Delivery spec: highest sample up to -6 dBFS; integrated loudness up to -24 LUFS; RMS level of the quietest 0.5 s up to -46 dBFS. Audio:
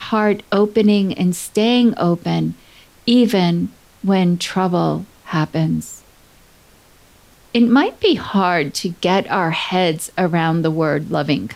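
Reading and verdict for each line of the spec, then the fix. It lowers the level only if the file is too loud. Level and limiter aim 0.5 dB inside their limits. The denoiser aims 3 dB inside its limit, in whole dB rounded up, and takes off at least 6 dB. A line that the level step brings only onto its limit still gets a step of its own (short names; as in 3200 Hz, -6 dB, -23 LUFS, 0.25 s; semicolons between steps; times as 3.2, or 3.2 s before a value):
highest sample -4.5 dBFS: fail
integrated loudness -17.5 LUFS: fail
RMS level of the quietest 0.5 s -49 dBFS: OK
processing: gain -7 dB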